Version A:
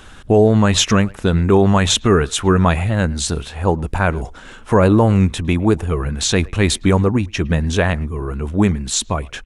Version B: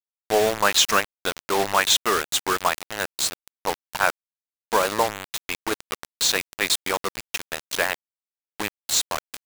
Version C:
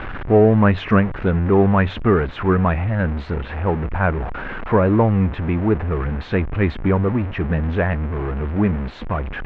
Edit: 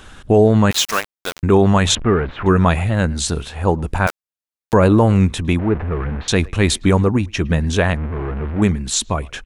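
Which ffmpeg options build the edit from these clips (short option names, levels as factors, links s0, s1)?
-filter_complex "[1:a]asplit=2[s0][s1];[2:a]asplit=3[s2][s3][s4];[0:a]asplit=6[s5][s6][s7][s8][s9][s10];[s5]atrim=end=0.712[s11];[s0]atrim=start=0.708:end=1.432[s12];[s6]atrim=start=1.428:end=1.952[s13];[s2]atrim=start=1.948:end=2.462[s14];[s7]atrim=start=2.458:end=4.072[s15];[s1]atrim=start=4.068:end=4.732[s16];[s8]atrim=start=4.728:end=5.592[s17];[s3]atrim=start=5.588:end=6.282[s18];[s9]atrim=start=6.278:end=7.972[s19];[s4]atrim=start=7.968:end=8.622[s20];[s10]atrim=start=8.618[s21];[s11][s12]acrossfade=d=0.004:c1=hsin:c2=hsin[s22];[s22][s13]acrossfade=d=0.004:c1=hsin:c2=hsin[s23];[s23][s14]acrossfade=d=0.004:c1=hsin:c2=hsin[s24];[s24][s15]acrossfade=d=0.004:c1=hsin:c2=hsin[s25];[s25][s16]acrossfade=d=0.004:c1=hsin:c2=hsin[s26];[s26][s17]acrossfade=d=0.004:c1=hsin:c2=hsin[s27];[s27][s18]acrossfade=d=0.004:c1=hsin:c2=hsin[s28];[s28][s19]acrossfade=d=0.004:c1=hsin:c2=hsin[s29];[s29][s20]acrossfade=d=0.004:c1=hsin:c2=hsin[s30];[s30][s21]acrossfade=d=0.004:c1=hsin:c2=hsin"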